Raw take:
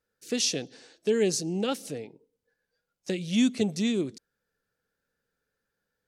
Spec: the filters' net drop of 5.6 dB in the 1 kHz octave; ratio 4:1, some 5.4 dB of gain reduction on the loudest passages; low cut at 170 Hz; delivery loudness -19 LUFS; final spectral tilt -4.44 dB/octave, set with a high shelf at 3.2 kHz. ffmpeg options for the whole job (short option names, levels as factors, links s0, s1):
-af "highpass=170,equalizer=f=1000:t=o:g=-7.5,highshelf=f=3200:g=-7,acompressor=threshold=0.0447:ratio=4,volume=5.31"